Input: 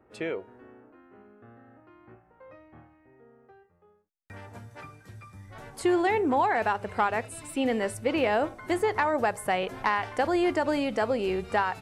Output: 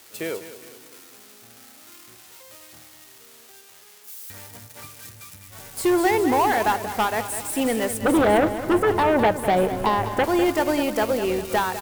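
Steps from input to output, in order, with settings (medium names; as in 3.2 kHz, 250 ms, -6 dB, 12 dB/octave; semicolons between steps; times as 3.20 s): zero-crossing glitches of -28.5 dBFS; 8.01–10.24 s: tilt shelf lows +9.5 dB, about 1.2 kHz; sine folder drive 9 dB, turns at -8 dBFS; feedback delay 202 ms, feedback 52%, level -9 dB; upward expansion 1.5:1, over -31 dBFS; trim -6 dB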